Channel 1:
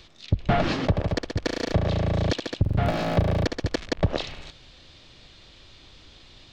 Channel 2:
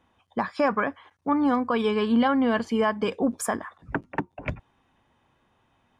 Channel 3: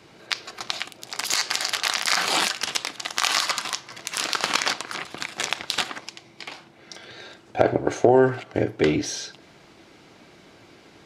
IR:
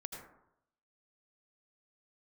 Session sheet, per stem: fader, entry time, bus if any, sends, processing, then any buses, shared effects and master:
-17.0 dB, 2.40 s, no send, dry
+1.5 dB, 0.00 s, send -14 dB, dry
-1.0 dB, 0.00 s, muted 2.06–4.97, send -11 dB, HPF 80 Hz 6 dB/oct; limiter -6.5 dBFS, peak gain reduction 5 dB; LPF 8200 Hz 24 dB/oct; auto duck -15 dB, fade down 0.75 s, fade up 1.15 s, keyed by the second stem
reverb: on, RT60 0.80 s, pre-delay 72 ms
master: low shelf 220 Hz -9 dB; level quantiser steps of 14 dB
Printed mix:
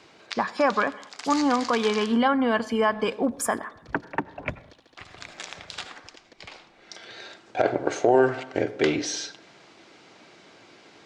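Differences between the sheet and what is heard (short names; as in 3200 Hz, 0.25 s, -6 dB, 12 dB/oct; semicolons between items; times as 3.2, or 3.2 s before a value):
stem 1 -17.0 dB -> -25.0 dB; master: missing level quantiser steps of 14 dB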